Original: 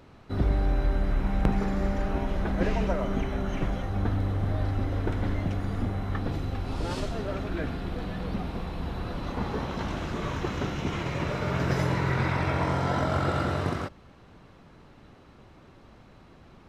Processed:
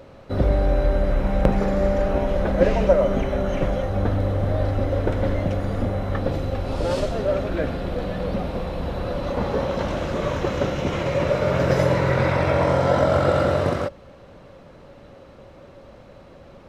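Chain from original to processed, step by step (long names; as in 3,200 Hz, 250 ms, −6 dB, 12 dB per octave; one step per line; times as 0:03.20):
parametric band 550 Hz +14.5 dB 0.34 octaves
level +4.5 dB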